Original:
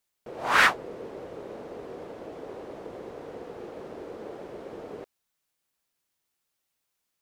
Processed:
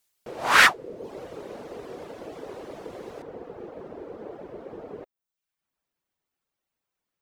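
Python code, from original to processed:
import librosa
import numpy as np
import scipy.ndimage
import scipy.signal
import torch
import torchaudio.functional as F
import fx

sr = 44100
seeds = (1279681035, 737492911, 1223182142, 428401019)

y = fx.dereverb_blind(x, sr, rt60_s=0.63)
y = fx.peak_eq(y, sr, hz=12000.0, db=fx.steps((0.0, 6.0), (3.22, -11.5)), octaves=3.0)
y = y * librosa.db_to_amplitude(2.5)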